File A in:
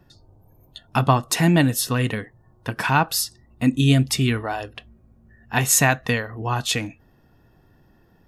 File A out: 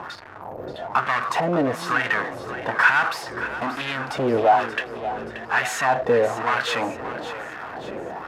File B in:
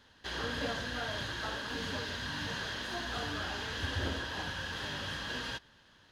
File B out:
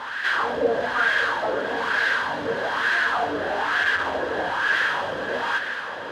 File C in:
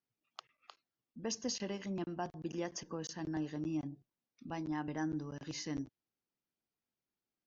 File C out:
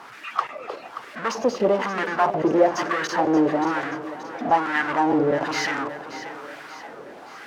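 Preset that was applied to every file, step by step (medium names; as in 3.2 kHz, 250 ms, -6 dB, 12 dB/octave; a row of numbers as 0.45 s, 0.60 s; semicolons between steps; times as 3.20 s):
in parallel at -1 dB: compressor with a negative ratio -22 dBFS; on the sum: power-law waveshaper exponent 0.35; wah-wah 1.1 Hz 470–1700 Hz, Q 2.9; two-band feedback delay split 430 Hz, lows 340 ms, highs 579 ms, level -12.5 dB; normalise loudness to -23 LUFS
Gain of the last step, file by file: -3.0 dB, +6.5 dB, +16.5 dB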